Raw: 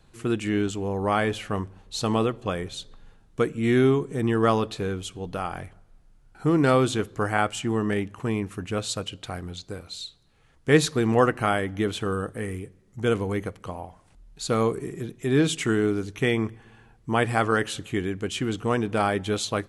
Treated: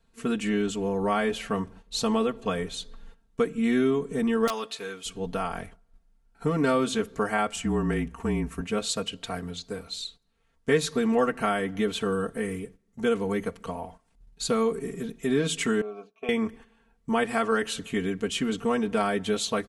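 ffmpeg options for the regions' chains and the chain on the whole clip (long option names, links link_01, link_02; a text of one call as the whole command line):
ffmpeg -i in.wav -filter_complex "[0:a]asettb=1/sr,asplit=3[link_01][link_02][link_03];[link_01]atrim=end=4.474[link_04];[link_02]atrim=start=4.47:end=5.06,asetpts=PTS-STARTPTS,afade=type=in:duration=0.004:curve=qsin,afade=type=out:start_time=0.586:duration=0.004:curve=qsin,highpass=frequency=1300:poles=1,aeval=exprs='(mod(4.73*val(0)+1,2)-1)/4.73':channel_layout=same[link_05];[link_03]atrim=start=5.056[link_06];[link_04][link_05]acrossfade=duration=0.004:curve1=hsin:curve2=qsin[link_07];[link_07][link_06]acrossfade=duration=0.004:curve1=qsin:curve2=hsin,asettb=1/sr,asplit=3[link_08][link_09][link_10];[link_08]atrim=end=7.564[link_11];[link_09]atrim=start=7.56:end=8.61,asetpts=PTS-STARTPTS,afade=type=in:duration=0.004:curve=qsin,afade=type=out:start_time=1.046:duration=0.004:curve=qsin,equalizer=frequency=3800:width=1.2:gain=-5.5,afreqshift=-33[link_12];[link_10]atrim=start=8.606[link_13];[link_11][link_12]acrossfade=duration=0.004:curve1=hsin:curve2=qsin[link_14];[link_14][link_13]acrossfade=duration=0.004:curve1=qsin:curve2=hsin,asettb=1/sr,asplit=3[link_15][link_16][link_17];[link_15]atrim=end=15.814[link_18];[link_16]atrim=start=15.81:end=16.29,asetpts=PTS-STARTPTS,afade=type=in:duration=0.004:curve=qsin,afade=type=out:start_time=0.476:duration=0.004:curve=qsin,asplit=3[link_19][link_20][link_21];[link_19]bandpass=frequency=730:width_type=q:width=8,volume=0dB[link_22];[link_20]bandpass=frequency=1090:width_type=q:width=8,volume=-6dB[link_23];[link_21]bandpass=frequency=2440:width_type=q:width=8,volume=-9dB[link_24];[link_22][link_23][link_24]amix=inputs=3:normalize=0,aecho=1:1:4.6:0.9,atrim=end_sample=21168[link_25];[link_17]atrim=start=16.286[link_26];[link_18][link_25]acrossfade=duration=0.004:curve1=hsin:curve2=qsin[link_27];[link_27][link_26]acrossfade=duration=0.004:curve1=qsin:curve2=hsin,aecho=1:1:4.4:0.96,acompressor=threshold=-22dB:ratio=2,agate=range=-11dB:threshold=-44dB:ratio=16:detection=peak,volume=-1.5dB" out.wav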